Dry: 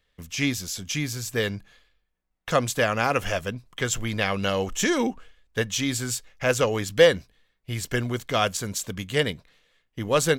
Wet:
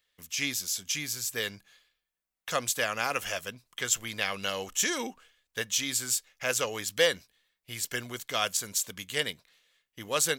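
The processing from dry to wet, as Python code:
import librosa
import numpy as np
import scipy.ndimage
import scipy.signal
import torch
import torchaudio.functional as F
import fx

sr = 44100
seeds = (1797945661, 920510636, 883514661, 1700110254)

y = fx.tilt_eq(x, sr, slope=3.0)
y = F.gain(torch.from_numpy(y), -7.0).numpy()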